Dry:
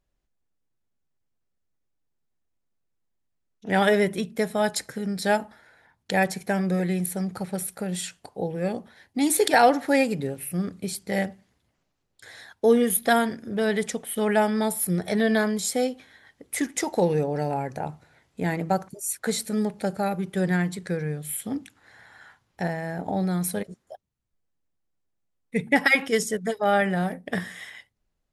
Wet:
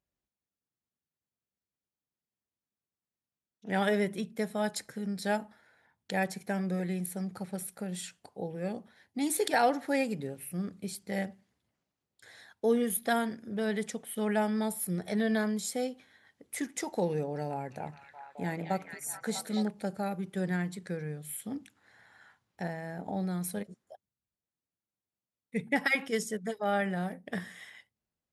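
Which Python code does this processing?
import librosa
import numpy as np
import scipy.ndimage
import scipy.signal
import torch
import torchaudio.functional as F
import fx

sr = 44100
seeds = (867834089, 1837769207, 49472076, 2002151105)

y = scipy.signal.sosfilt(scipy.signal.butter(2, 76.0, 'highpass', fs=sr, output='sos'), x)
y = fx.peak_eq(y, sr, hz=210.0, db=4.0, octaves=0.21)
y = fx.echo_stepped(y, sr, ms=215, hz=3000.0, octaves=-0.7, feedback_pct=70, wet_db=-0.5, at=(17.49, 19.68))
y = y * 10.0 ** (-8.5 / 20.0)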